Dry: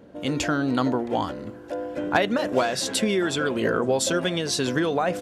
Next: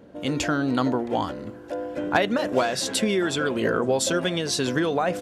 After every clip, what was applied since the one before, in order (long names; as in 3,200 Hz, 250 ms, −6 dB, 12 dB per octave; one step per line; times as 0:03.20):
no processing that can be heard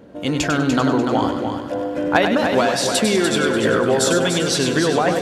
echo machine with several playback heads 98 ms, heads first and third, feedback 48%, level −7 dB
level +4.5 dB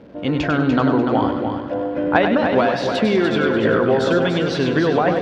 surface crackle 400 per second −40 dBFS
high-frequency loss of the air 280 metres
level +1.5 dB